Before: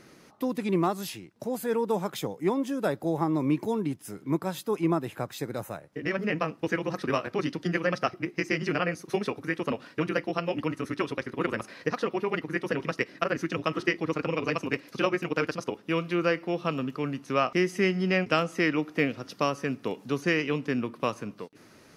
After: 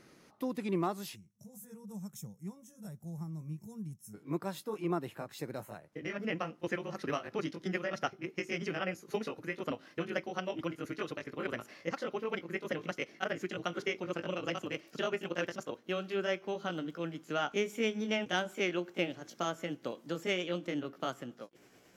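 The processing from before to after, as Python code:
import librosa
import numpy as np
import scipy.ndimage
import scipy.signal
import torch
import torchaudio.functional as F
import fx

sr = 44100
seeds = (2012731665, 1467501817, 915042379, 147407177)

y = fx.pitch_glide(x, sr, semitones=3.0, runs='starting unshifted')
y = fx.spec_box(y, sr, start_s=1.15, length_s=2.99, low_hz=230.0, high_hz=5300.0, gain_db=-20)
y = y * 10.0 ** (-6.5 / 20.0)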